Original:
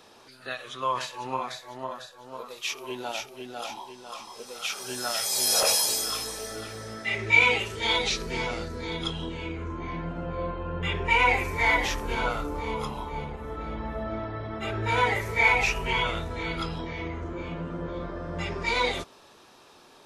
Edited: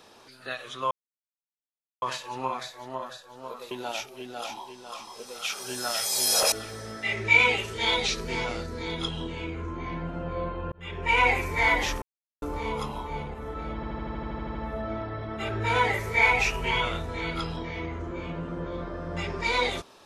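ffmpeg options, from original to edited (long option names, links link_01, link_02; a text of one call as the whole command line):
ffmpeg -i in.wav -filter_complex "[0:a]asplit=17[link_01][link_02][link_03][link_04][link_05][link_06][link_07][link_08][link_09][link_10][link_11][link_12][link_13][link_14][link_15][link_16][link_17];[link_01]atrim=end=0.91,asetpts=PTS-STARTPTS,afade=type=out:start_time=0.906:duration=0.004:curve=hsin,apad=pad_dur=1.11[link_18];[link_02]atrim=start=0.91:end=2.602,asetpts=PTS-STARTPTS,afade=type=in:duration=0.004:curve=hsin[link_19];[link_03]atrim=start=2.908:end=5.722[link_20];[link_04]atrim=start=6.538:end=10.74,asetpts=PTS-STARTPTS,afade=type=out:start_time=4.198:duration=0.004:curve=hsin[link_21];[link_05]atrim=start=10.74:end=12.04,asetpts=PTS-STARTPTS,afade=type=in:duration=0.46,afade=type=out:start_time=1.296:duration=0.004:curve=hsin[link_22];[link_06]atrim=start=12.04:end=12.44,asetpts=PTS-STARTPTS,volume=0[link_23];[link_07]atrim=start=12.44:end=13.852,asetpts=PTS-STARTPTS,afade=type=in:duration=0.004:curve=hsin[link_24];[link_08]atrim=start=13.768:end=13.852[link_25];[link_09]atrim=start=13.768:end=13.852[link_26];[link_10]atrim=start=13.768:end=13.852[link_27];[link_11]atrim=start=13.768:end=13.852[link_28];[link_12]atrim=start=13.768:end=13.852[link_29];[link_13]atrim=start=13.768:end=13.852[link_30];[link_14]atrim=start=13.768:end=13.852[link_31];[link_15]atrim=start=13.768:end=13.852[link_32];[link_16]atrim=start=13.768:end=13.852[link_33];[link_17]atrim=start=13.768[link_34];[link_18][link_19]concat=n=2:v=0:a=1[link_35];[link_35][link_20]acrossfade=duration=0.004:curve1=hsin:curve2=hsin[link_36];[link_21][link_22][link_23][link_24]concat=n=4:v=0:a=1[link_37];[link_36][link_37]acrossfade=duration=0.004:curve1=hsin:curve2=hsin[link_38];[link_38][link_25]acrossfade=duration=0.004:curve1=hsin:curve2=hsin[link_39];[link_39][link_26]acrossfade=duration=0.004:curve1=hsin:curve2=hsin[link_40];[link_40][link_27]acrossfade=duration=0.004:curve1=hsin:curve2=hsin[link_41];[link_41][link_28]acrossfade=duration=0.004:curve1=hsin:curve2=hsin[link_42];[link_42][link_29]acrossfade=duration=0.004:curve1=hsin:curve2=hsin[link_43];[link_43][link_30]acrossfade=duration=0.004:curve1=hsin:curve2=hsin[link_44];[link_44][link_31]acrossfade=duration=0.004:curve1=hsin:curve2=hsin[link_45];[link_45][link_32]acrossfade=duration=0.004:curve1=hsin:curve2=hsin[link_46];[link_46][link_33]acrossfade=duration=0.004:curve1=hsin:curve2=hsin[link_47];[link_47][link_34]acrossfade=duration=0.004:curve1=hsin:curve2=hsin" out.wav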